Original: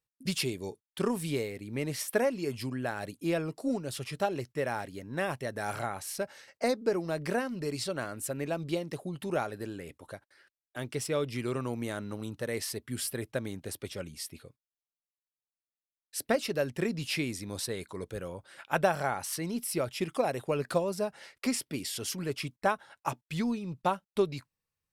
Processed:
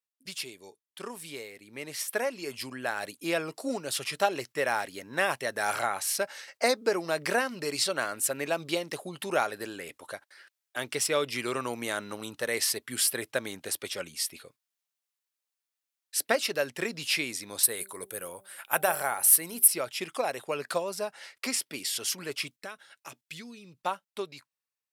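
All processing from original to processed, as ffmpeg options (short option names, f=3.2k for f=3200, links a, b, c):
-filter_complex "[0:a]asettb=1/sr,asplit=3[a][b][c];[a]atrim=end=17.634[d];[b]atrim=start=17.63:end=19.68,asetpts=PTS-STARTPTS,afade=t=in:d=0.004:c=qsin,afade=t=out:st=2.046:d=0.004:c=qsin,bandreject=f=194.2:t=h:w=4,bandreject=f=388.4:t=h:w=4,bandreject=f=582.6:t=h:w=4,bandreject=f=776.8:t=h:w=4,deesser=0.35,highshelf=f=8k:t=q:w=1.5:g=14[e];[c]atrim=start=19.676[f];[d][e]acrossfade=d=0.004:c1=hsin:c2=qsin[g];[g][f]acrossfade=d=0.004:c1=qsin:c2=hsin,asettb=1/sr,asplit=3[h][i][j];[h]atrim=end=22.524[k];[i]atrim=start=22.52:end=23.79,asetpts=PTS-STARTPTS,afade=t=in:d=0.004:c=qsin,afade=t=out:st=1.266:d=0.004:c=qsin,acompressor=threshold=-37dB:ratio=2:attack=3.2:release=140:knee=1:detection=peak,equalizer=f=890:w=1.3:g=-12.5[l];[j]atrim=start=23.786[m];[k][l]acrossfade=d=0.004:c1=hsin:c2=qsin[n];[n][m]acrossfade=d=0.004:c1=qsin:c2=hsin,highpass=f=1k:p=1,dynaudnorm=f=720:g=7:m=13dB,volume=-3.5dB"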